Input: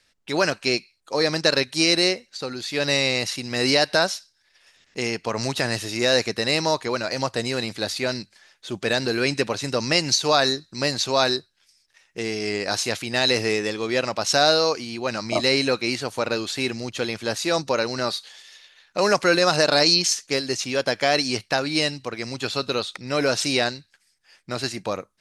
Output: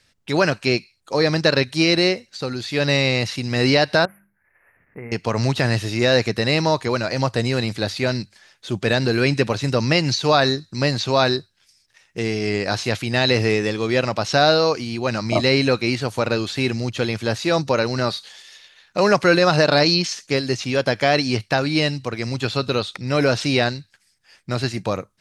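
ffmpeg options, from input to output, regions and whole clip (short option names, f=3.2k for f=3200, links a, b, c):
-filter_complex "[0:a]asettb=1/sr,asplit=3[a][b][c];[a]atrim=end=4.054[d];[b]atrim=start=4.05:end=5.12,asetpts=PTS-STARTPTS,afade=t=in:d=0.004:c=qsin,afade=t=out:st=1.066:d=0.004:c=qsin,bandreject=f=50:t=h:w=6,bandreject=f=100:t=h:w=6,bandreject=f=150:t=h:w=6,bandreject=f=200:t=h:w=6,bandreject=f=250:t=h:w=6,bandreject=f=300:t=h:w=6,bandreject=f=350:t=h:w=6,acompressor=threshold=-39dB:ratio=2.5:attack=3.2:release=140:knee=1:detection=peak,asuperstop=centerf=5300:order=12:qfactor=0.6[e];[c]atrim=start=5.116[f];[d][e]acrossfade=d=0.004:c1=hsin:c2=qsin[g];[g][f]acrossfade=d=0.004:c1=qsin:c2=hsin,equalizer=f=110:w=0.79:g=9,acrossover=split=4600[h][i];[i]acompressor=threshold=-40dB:ratio=4:attack=1:release=60[j];[h][j]amix=inputs=2:normalize=0,volume=2.5dB"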